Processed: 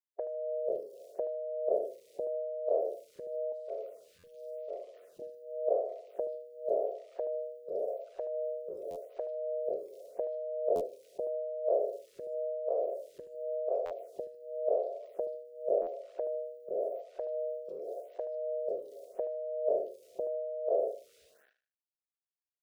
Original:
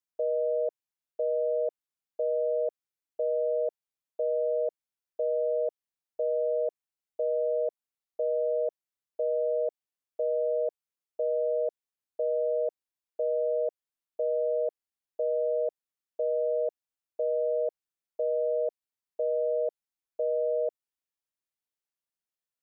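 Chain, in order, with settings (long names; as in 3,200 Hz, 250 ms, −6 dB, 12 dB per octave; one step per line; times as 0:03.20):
peak hold with a decay on every bin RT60 1.18 s
in parallel at −2.5 dB: downward compressor 5 to 1, threshold −41 dBFS, peak gain reduction 14.5 dB
0:03.52–0:05.22: on the sum: parametric band 640 Hz −7 dB 1.8 octaves
on a send: single-tap delay 155 ms −22.5 dB
on the sum: centre clipping without the shift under −58 dBFS
noise reduction from a noise print of the clip's start 14 dB
repeating echo 76 ms, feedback 28%, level −12.5 dB
buffer that repeats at 0:04.18/0:08.90/0:10.75/0:13.85/0:15.81, samples 512, times 4
phaser with staggered stages 0.89 Hz
level +5.5 dB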